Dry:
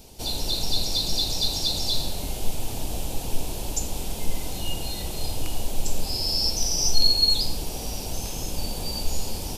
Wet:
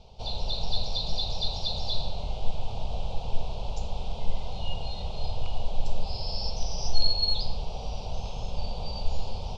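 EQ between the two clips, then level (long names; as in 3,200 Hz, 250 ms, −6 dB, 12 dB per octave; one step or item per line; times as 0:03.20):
low-pass filter 3,900 Hz 24 dB per octave
phaser with its sweep stopped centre 740 Hz, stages 4
0.0 dB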